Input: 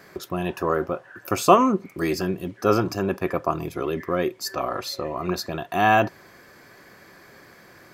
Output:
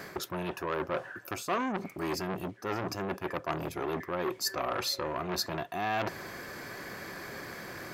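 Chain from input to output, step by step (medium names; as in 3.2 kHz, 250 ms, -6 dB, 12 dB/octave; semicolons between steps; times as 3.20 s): reverse; compression 6:1, threshold -35 dBFS, peak gain reduction 24 dB; reverse; transformer saturation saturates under 1.7 kHz; trim +7.5 dB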